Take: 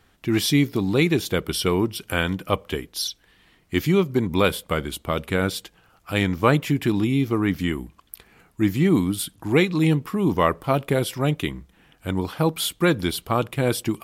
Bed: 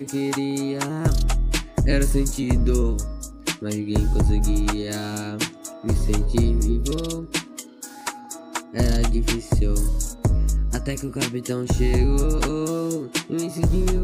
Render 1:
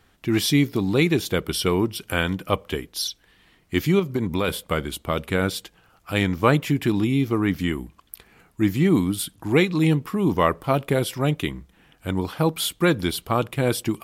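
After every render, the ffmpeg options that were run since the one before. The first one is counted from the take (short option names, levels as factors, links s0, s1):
-filter_complex "[0:a]asettb=1/sr,asplit=3[s0][s1][s2];[s0]atrim=end=3.994[s3];[s1]atrim=start=3.99:end=4.48,asetpts=PTS-STARTPTS,afade=t=in:d=0.004:c=qsin,afade=t=out:st=0.486:d=0.004:c=qsin,acompressor=threshold=0.126:ratio=6:attack=3.2:release=140:knee=1:detection=peak[s4];[s2]atrim=start=4.476[s5];[s3][s4]acrossfade=d=0.004:c1=hsin:c2=qsin[s6];[s6][s5]acrossfade=d=0.004:c1=qsin:c2=hsin"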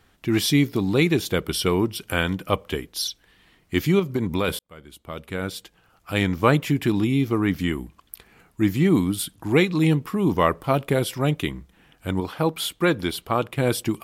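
-filter_complex "[0:a]asettb=1/sr,asplit=3[s0][s1][s2];[s0]atrim=end=12.204[s3];[s1]atrim=start=12.2:end=13.58,asetpts=PTS-STARTPTS,afade=t=in:d=0.004:c=qsin,afade=t=out:st=1.376:d=0.004:c=qsin,bass=f=250:g=-4,treble=f=4000:g=-4[s4];[s2]atrim=start=13.576[s5];[s3][s4]acrossfade=d=0.004:c1=hsin:c2=qsin[s6];[s6][s5]acrossfade=d=0.004:c1=qsin:c2=hsin,asplit=2[s7][s8];[s7]atrim=end=4.59,asetpts=PTS-STARTPTS,afade=t=out:st=4.586:d=0.004:c=hsin[s9];[s8]atrim=start=4.59,asetpts=PTS-STARTPTS,afade=t=in:d=1.68[s10];[s9][s10]concat=n=2:v=0:a=1"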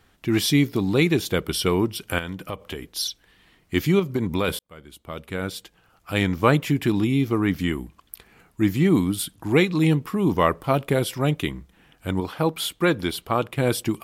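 -filter_complex "[0:a]asettb=1/sr,asplit=3[s0][s1][s2];[s0]atrim=end=2.184[s3];[s1]atrim=start=2.18:end=2.82,asetpts=PTS-STARTPTS,afade=t=in:d=0.004:c=qsin,afade=t=out:st=0.636:d=0.004:c=qsin,acompressor=threshold=0.0355:ratio=3:attack=3.2:release=140:knee=1:detection=peak[s4];[s2]atrim=start=2.816[s5];[s3][s4]acrossfade=d=0.004:c1=hsin:c2=qsin[s6];[s6][s5]acrossfade=d=0.004:c1=qsin:c2=hsin"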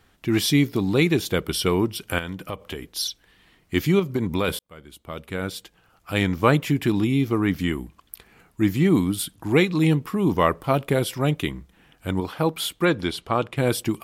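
-filter_complex "[0:a]asettb=1/sr,asplit=3[s0][s1][s2];[s0]atrim=end=12.854[s3];[s1]atrim=start=12.85:end=13.57,asetpts=PTS-STARTPTS,afade=t=in:d=0.004:c=qsin,afade=t=out:st=0.716:d=0.004:c=qsin,lowpass=8400[s4];[s2]atrim=start=13.566[s5];[s3][s4]acrossfade=d=0.004:c1=hsin:c2=qsin[s6];[s6][s5]acrossfade=d=0.004:c1=qsin:c2=hsin"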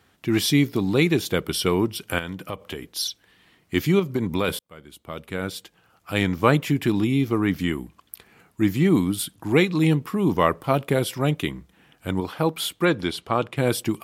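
-af "highpass=81"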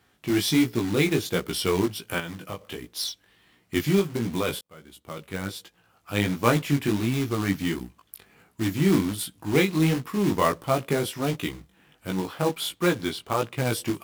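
-af "acrusher=bits=3:mode=log:mix=0:aa=0.000001,flanger=delay=16.5:depth=4.3:speed=1.4"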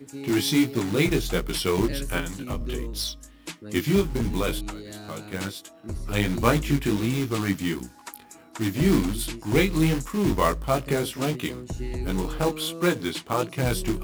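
-filter_complex "[1:a]volume=0.251[s0];[0:a][s0]amix=inputs=2:normalize=0"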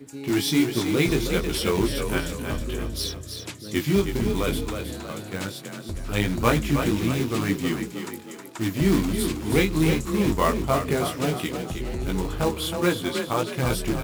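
-filter_complex "[0:a]asplit=6[s0][s1][s2][s3][s4][s5];[s1]adelay=317,afreqshift=31,volume=0.447[s6];[s2]adelay=634,afreqshift=62,volume=0.197[s7];[s3]adelay=951,afreqshift=93,volume=0.0861[s8];[s4]adelay=1268,afreqshift=124,volume=0.038[s9];[s5]adelay=1585,afreqshift=155,volume=0.0168[s10];[s0][s6][s7][s8][s9][s10]amix=inputs=6:normalize=0"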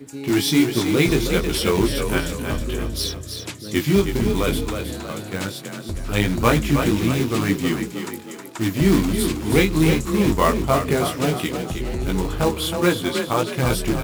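-af "volume=1.58,alimiter=limit=0.891:level=0:latency=1"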